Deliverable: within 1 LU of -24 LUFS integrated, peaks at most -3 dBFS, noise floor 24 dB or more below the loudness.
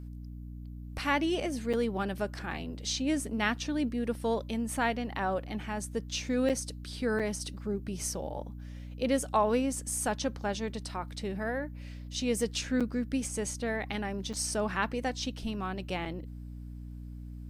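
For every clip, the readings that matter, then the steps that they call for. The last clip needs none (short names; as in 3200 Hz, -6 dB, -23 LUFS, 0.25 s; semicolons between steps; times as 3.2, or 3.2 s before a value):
dropouts 6; longest dropout 6.5 ms; hum 60 Hz; harmonics up to 300 Hz; hum level -40 dBFS; loudness -32.5 LUFS; peak -15.0 dBFS; loudness target -24.0 LUFS
-> interpolate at 1.73/6.49/7.19/12.8/14.33/16.05, 6.5 ms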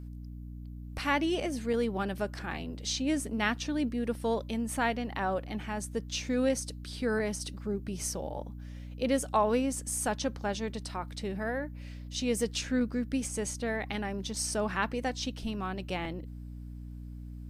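dropouts 0; hum 60 Hz; harmonics up to 300 Hz; hum level -40 dBFS
-> notches 60/120/180/240/300 Hz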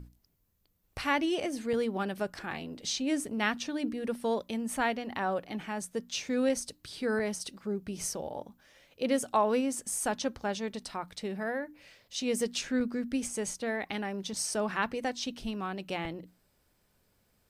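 hum none; loudness -33.0 LUFS; peak -15.5 dBFS; loudness target -24.0 LUFS
-> gain +9 dB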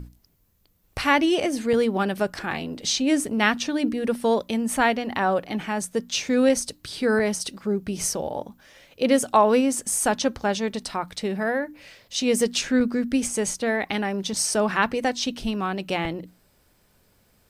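loudness -24.0 LUFS; peak -6.5 dBFS; noise floor -63 dBFS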